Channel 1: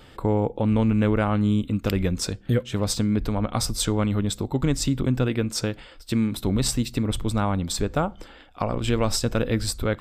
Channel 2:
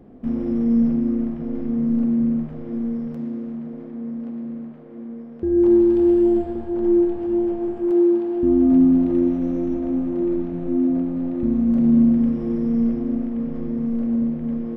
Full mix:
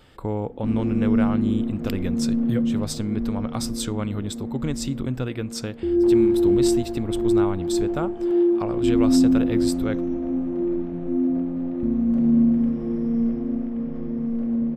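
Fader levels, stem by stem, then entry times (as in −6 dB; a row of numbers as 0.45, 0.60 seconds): −4.5, −2.5 decibels; 0.00, 0.40 seconds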